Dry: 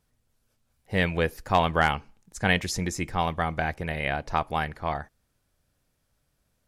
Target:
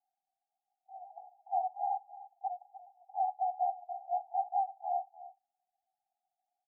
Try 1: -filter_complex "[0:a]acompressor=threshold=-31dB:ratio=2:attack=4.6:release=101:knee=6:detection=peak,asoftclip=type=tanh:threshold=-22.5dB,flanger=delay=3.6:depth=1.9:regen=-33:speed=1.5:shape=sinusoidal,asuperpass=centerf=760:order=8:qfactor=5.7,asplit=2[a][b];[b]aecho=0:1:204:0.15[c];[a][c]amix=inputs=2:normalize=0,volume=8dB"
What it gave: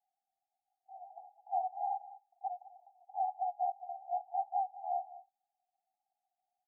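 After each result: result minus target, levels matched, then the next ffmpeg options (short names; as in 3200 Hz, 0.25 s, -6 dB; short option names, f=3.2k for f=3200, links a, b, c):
echo 95 ms early; compressor: peak gain reduction +3 dB
-filter_complex "[0:a]acompressor=threshold=-31dB:ratio=2:attack=4.6:release=101:knee=6:detection=peak,asoftclip=type=tanh:threshold=-22.5dB,flanger=delay=3.6:depth=1.9:regen=-33:speed=1.5:shape=sinusoidal,asuperpass=centerf=760:order=8:qfactor=5.7,asplit=2[a][b];[b]aecho=0:1:299:0.15[c];[a][c]amix=inputs=2:normalize=0,volume=8dB"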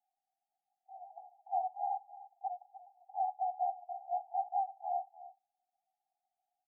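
compressor: peak gain reduction +3 dB
-filter_complex "[0:a]acompressor=threshold=-24.5dB:ratio=2:attack=4.6:release=101:knee=6:detection=peak,asoftclip=type=tanh:threshold=-22.5dB,flanger=delay=3.6:depth=1.9:regen=-33:speed=1.5:shape=sinusoidal,asuperpass=centerf=760:order=8:qfactor=5.7,asplit=2[a][b];[b]aecho=0:1:299:0.15[c];[a][c]amix=inputs=2:normalize=0,volume=8dB"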